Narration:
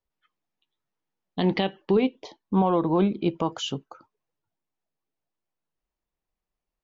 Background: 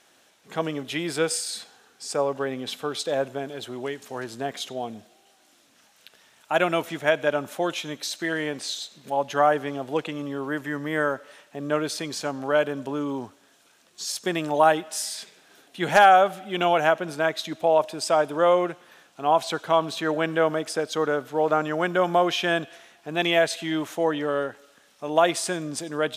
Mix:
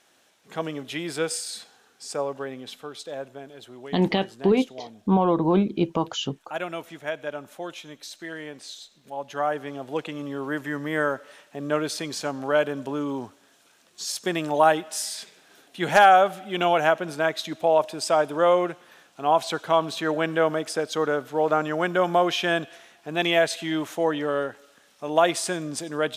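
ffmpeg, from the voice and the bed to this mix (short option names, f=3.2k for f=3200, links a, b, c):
-filter_complex "[0:a]adelay=2550,volume=1.5dB[a];[1:a]volume=6.5dB,afade=t=out:st=2.01:d=0.92:silence=0.473151,afade=t=in:st=9.13:d=1.41:silence=0.354813[b];[a][b]amix=inputs=2:normalize=0"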